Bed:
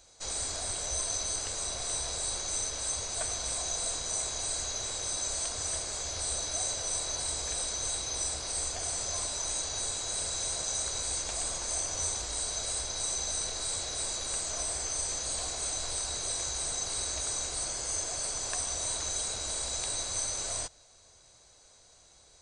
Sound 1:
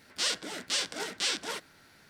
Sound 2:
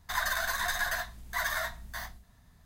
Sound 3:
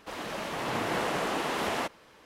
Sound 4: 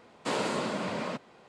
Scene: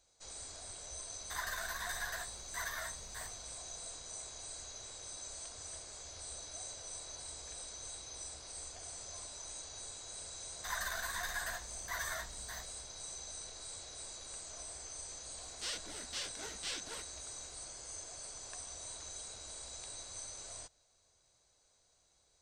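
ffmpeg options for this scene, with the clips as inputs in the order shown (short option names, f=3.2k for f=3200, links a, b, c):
-filter_complex "[2:a]asplit=2[a][b];[0:a]volume=-13.5dB[c];[a]atrim=end=2.65,asetpts=PTS-STARTPTS,volume=-10dB,afade=t=in:d=0.004:c=hsin,afade=t=out:st=2.646:d=0.004:c=hsin,adelay=1210[d];[b]atrim=end=2.65,asetpts=PTS-STARTPTS,volume=-9dB,afade=t=in:d=0.004:c=hsin,afade=t=out:st=2.646:d=0.004:c=hsin,adelay=10550[e];[1:a]atrim=end=2.09,asetpts=PTS-STARTPTS,volume=-11.5dB,afade=t=in:d=0.004:c=hsin,afade=t=out:st=2.086:d=0.004:c=hsin,adelay=15430[f];[c][d][e][f]amix=inputs=4:normalize=0"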